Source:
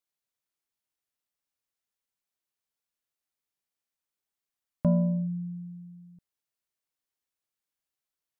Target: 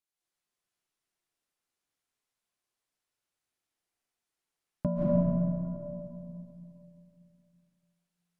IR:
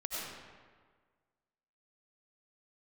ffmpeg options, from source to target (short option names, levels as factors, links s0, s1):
-filter_complex "[0:a]asettb=1/sr,asplit=3[s0][s1][s2];[s0]atrim=end=4.864[s3];[s1]atrim=start=4.86:end=5.85,asetpts=PTS-STARTPTS,afade=t=in:d=0.004:c=qsin,afade=t=out:st=0.986:d=0.004:c=qsin,highpass=f=350:p=1[s4];[s2]atrim=start=5.846[s5];[s3][s4]acrossfade=d=0.004:c1=hsin:c2=qsin[s6];[s6][s5]acrossfade=d=0.004:c1=qsin:c2=hsin[s7];[1:a]atrim=start_sample=2205,asetrate=24255,aresample=44100[s8];[s7][s8]afir=irnorm=-1:irlink=0,volume=0.75"